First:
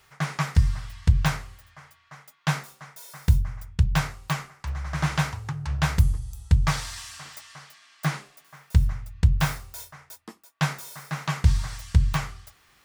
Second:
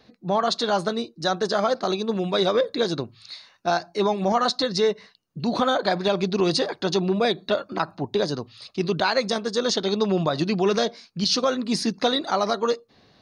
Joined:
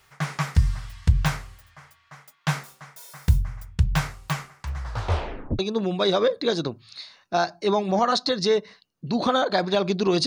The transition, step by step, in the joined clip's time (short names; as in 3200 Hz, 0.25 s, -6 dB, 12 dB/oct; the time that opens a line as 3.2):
first
4.77 tape stop 0.82 s
5.59 switch to second from 1.92 s